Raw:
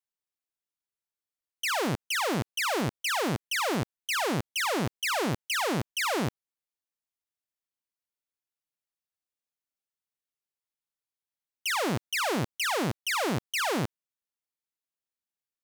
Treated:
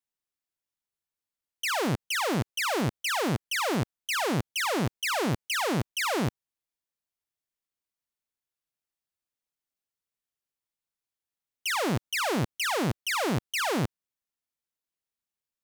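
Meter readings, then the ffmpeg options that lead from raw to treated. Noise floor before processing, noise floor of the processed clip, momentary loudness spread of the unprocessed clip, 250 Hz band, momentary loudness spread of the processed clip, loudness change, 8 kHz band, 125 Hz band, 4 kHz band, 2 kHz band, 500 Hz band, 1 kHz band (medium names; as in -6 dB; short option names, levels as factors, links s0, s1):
under -85 dBFS, under -85 dBFS, 3 LU, +1.5 dB, 3 LU, +0.5 dB, 0.0 dB, +3.0 dB, 0.0 dB, 0.0 dB, +0.5 dB, 0.0 dB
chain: -af "lowshelf=f=180:g=4.5"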